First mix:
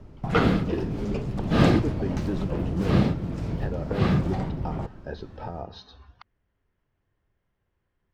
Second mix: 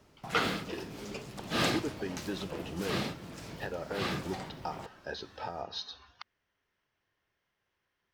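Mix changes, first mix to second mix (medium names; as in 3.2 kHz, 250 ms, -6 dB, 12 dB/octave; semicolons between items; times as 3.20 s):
background -6.0 dB; master: add tilt EQ +4 dB/octave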